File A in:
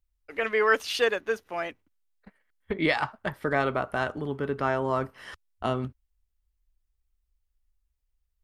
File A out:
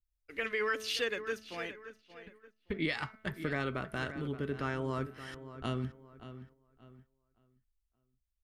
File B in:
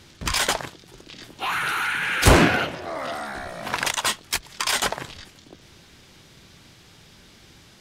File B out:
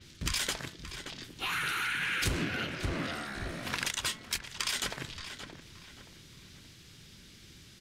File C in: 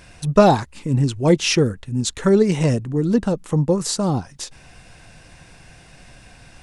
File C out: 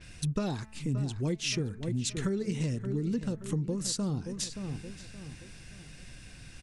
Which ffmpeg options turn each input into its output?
-filter_complex "[0:a]equalizer=f=780:t=o:w=1.5:g=-12.5,bandreject=f=217.9:t=h:w=4,bandreject=f=435.8:t=h:w=4,bandreject=f=653.7:t=h:w=4,bandreject=f=871.6:t=h:w=4,bandreject=f=1089.5:t=h:w=4,bandreject=f=1307.4:t=h:w=4,bandreject=f=1525.3:t=h:w=4,bandreject=f=1743.2:t=h:w=4,bandreject=f=1961.1:t=h:w=4,bandreject=f=2179:t=h:w=4,bandreject=f=2396.9:t=h:w=4,asplit=2[s0][s1];[s1]adelay=574,lowpass=f=3300:p=1,volume=0.211,asplit=2[s2][s3];[s3]adelay=574,lowpass=f=3300:p=1,volume=0.37,asplit=2[s4][s5];[s5]adelay=574,lowpass=f=3300:p=1,volume=0.37,asplit=2[s6][s7];[s7]adelay=574,lowpass=f=3300:p=1,volume=0.37[s8];[s2][s4][s6][s8]amix=inputs=4:normalize=0[s9];[s0][s9]amix=inputs=2:normalize=0,acompressor=threshold=0.0501:ratio=8,agate=range=0.501:threshold=0.00158:ratio=16:detection=peak,adynamicequalizer=threshold=0.00447:dfrequency=6600:dqfactor=0.7:tfrequency=6600:tqfactor=0.7:attack=5:release=100:ratio=0.375:range=2:mode=cutabove:tftype=highshelf,volume=0.794"

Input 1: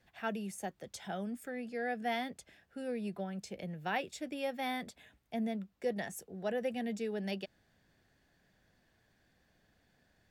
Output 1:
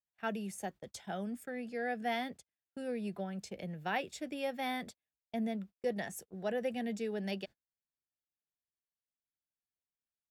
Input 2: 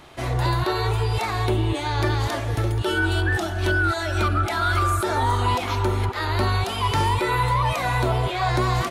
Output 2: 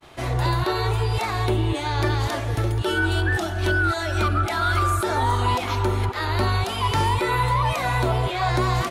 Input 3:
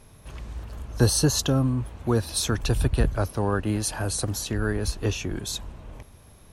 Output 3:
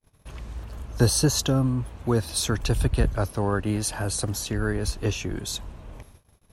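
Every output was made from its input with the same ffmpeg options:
-af "agate=range=0.0126:threshold=0.00398:ratio=16:detection=peak"

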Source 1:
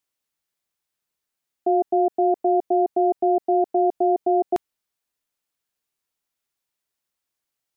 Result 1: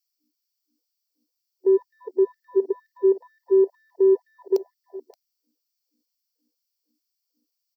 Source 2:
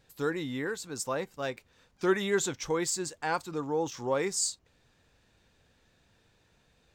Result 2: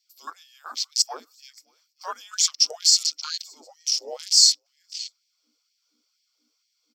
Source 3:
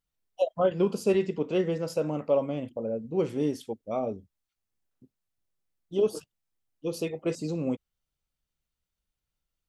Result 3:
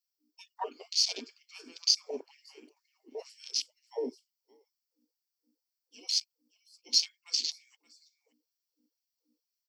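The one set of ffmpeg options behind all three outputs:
-filter_complex "[0:a]afreqshift=-320,crystalizer=i=5.5:c=0,superequalizer=6b=0.282:7b=2:11b=0.447:14b=3.55:16b=0.355,aeval=exprs='val(0)+0.00708*(sin(2*PI*60*n/s)+sin(2*PI*2*60*n/s)/2+sin(2*PI*3*60*n/s)/3+sin(2*PI*4*60*n/s)/4+sin(2*PI*5*60*n/s)/5)':c=same,asplit=2[s0][s1];[s1]aecho=0:1:575:0.141[s2];[s0][s2]amix=inputs=2:normalize=0,afwtdn=0.0355,acrossover=split=6400[s3][s4];[s4]acompressor=threshold=0.0501:ratio=4:attack=1:release=60[s5];[s3][s5]amix=inputs=2:normalize=0,afftfilt=real='re*gte(b*sr/1024,240*pow(1700/240,0.5+0.5*sin(2*PI*2.1*pts/sr)))':imag='im*gte(b*sr/1024,240*pow(1700/240,0.5+0.5*sin(2*PI*2.1*pts/sr)))':win_size=1024:overlap=0.75"

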